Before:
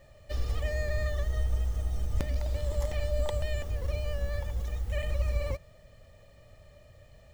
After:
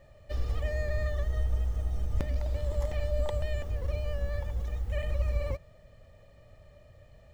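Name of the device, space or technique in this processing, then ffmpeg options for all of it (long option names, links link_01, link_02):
behind a face mask: -af "highshelf=frequency=3100:gain=-7.5"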